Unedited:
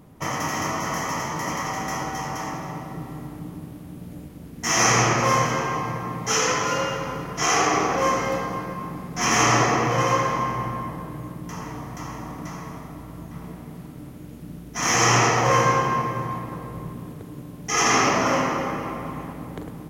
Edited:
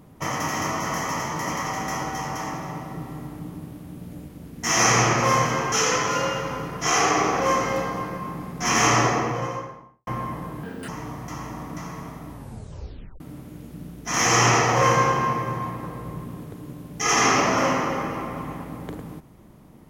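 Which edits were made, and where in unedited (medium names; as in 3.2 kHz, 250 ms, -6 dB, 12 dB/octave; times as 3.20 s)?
5.72–6.28 s: delete
9.39–10.63 s: studio fade out
11.19–11.57 s: speed 150%
12.99 s: tape stop 0.90 s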